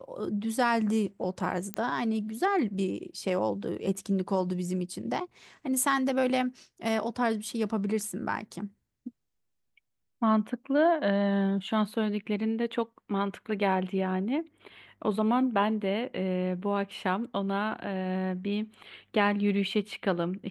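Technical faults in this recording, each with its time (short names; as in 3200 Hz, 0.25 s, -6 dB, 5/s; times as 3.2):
1.74 pop -16 dBFS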